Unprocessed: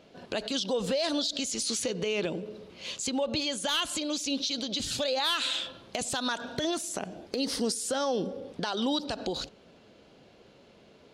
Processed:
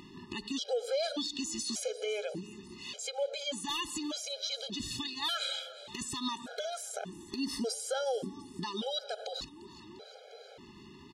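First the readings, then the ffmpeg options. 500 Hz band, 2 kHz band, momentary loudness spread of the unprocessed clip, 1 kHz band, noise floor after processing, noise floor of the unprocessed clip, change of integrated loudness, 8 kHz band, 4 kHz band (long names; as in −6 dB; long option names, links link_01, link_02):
−4.5 dB, −7.0 dB, 8 LU, −5.5 dB, −53 dBFS, −57 dBFS, −5.5 dB, −5.5 dB, −5.5 dB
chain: -filter_complex "[0:a]asplit=6[link_01][link_02][link_03][link_04][link_05][link_06];[link_02]adelay=350,afreqshift=30,volume=-19dB[link_07];[link_03]adelay=700,afreqshift=60,volume=-23.7dB[link_08];[link_04]adelay=1050,afreqshift=90,volume=-28.5dB[link_09];[link_05]adelay=1400,afreqshift=120,volume=-33.2dB[link_10];[link_06]adelay=1750,afreqshift=150,volume=-37.9dB[link_11];[link_01][link_07][link_08][link_09][link_10][link_11]amix=inputs=6:normalize=0,acompressor=mode=upward:threshold=-36dB:ratio=2.5,afftfilt=real='re*gt(sin(2*PI*0.85*pts/sr)*(1-2*mod(floor(b*sr/1024/420),2)),0)':imag='im*gt(sin(2*PI*0.85*pts/sr)*(1-2*mod(floor(b*sr/1024/420),2)),0)':win_size=1024:overlap=0.75,volume=-2.5dB"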